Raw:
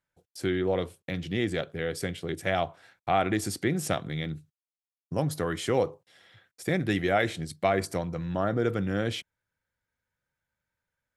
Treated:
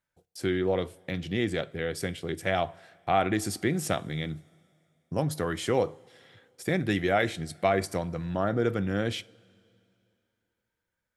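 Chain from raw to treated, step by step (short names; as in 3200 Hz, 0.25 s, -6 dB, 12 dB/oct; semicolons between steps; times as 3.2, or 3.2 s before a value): two-slope reverb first 0.35 s, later 2.7 s, from -16 dB, DRR 17.5 dB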